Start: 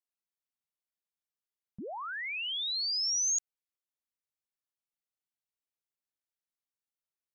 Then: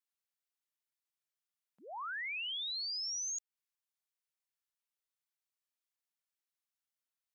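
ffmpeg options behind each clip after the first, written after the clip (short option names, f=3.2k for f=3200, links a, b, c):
-af "highpass=910,acompressor=threshold=-38dB:ratio=6"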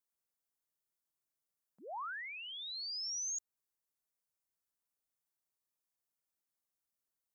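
-af "equalizer=f=2.8k:w=0.71:g=-10.5,volume=3.5dB"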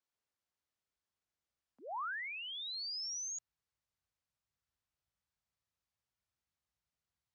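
-af "afreqshift=46,lowpass=5.2k,asubboost=boost=6.5:cutoff=120,volume=2.5dB"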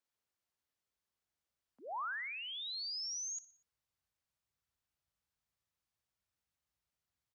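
-af "aecho=1:1:60|120|180|240:0.126|0.0655|0.034|0.0177"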